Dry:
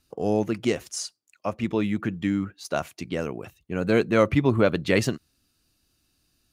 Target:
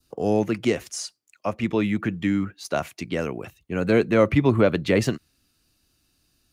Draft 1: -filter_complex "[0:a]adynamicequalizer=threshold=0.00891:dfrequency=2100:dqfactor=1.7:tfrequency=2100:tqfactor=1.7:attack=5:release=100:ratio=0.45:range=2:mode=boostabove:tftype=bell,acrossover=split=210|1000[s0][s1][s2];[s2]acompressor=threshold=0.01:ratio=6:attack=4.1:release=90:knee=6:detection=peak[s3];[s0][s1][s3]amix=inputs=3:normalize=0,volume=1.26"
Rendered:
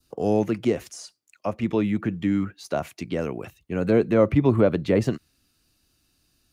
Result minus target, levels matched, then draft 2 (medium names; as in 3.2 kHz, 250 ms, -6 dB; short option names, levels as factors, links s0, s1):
compression: peak gain reduction +9.5 dB
-filter_complex "[0:a]adynamicequalizer=threshold=0.00891:dfrequency=2100:dqfactor=1.7:tfrequency=2100:tqfactor=1.7:attack=5:release=100:ratio=0.45:range=2:mode=boostabove:tftype=bell,acrossover=split=210|1000[s0][s1][s2];[s2]acompressor=threshold=0.0376:ratio=6:attack=4.1:release=90:knee=6:detection=peak[s3];[s0][s1][s3]amix=inputs=3:normalize=0,volume=1.26"